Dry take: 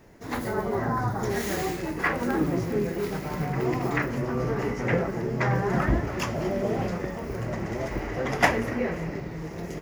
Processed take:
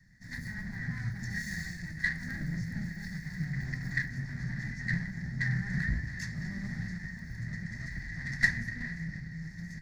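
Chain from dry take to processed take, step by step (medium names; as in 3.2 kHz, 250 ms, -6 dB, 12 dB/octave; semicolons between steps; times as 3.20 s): comb filter that takes the minimum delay 1.1 ms; FFT filter 100 Hz 0 dB, 170 Hz +4 dB, 340 Hz -16 dB, 590 Hz -23 dB, 1.1 kHz -24 dB, 1.9 kHz +9 dB, 2.8 kHz -24 dB, 4.3 kHz +2 dB, 6.8 kHz -2 dB, 15 kHz -14 dB; trim -6 dB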